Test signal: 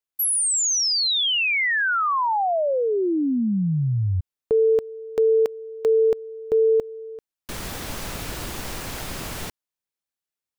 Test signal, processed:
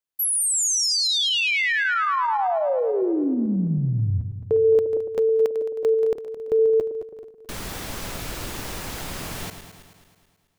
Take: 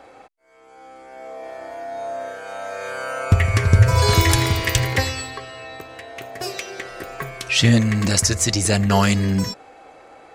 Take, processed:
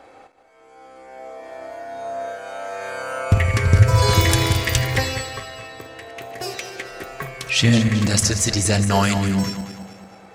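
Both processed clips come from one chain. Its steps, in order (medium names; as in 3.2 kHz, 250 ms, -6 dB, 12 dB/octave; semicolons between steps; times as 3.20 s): backward echo that repeats 108 ms, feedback 67%, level -10 dB; trim -1 dB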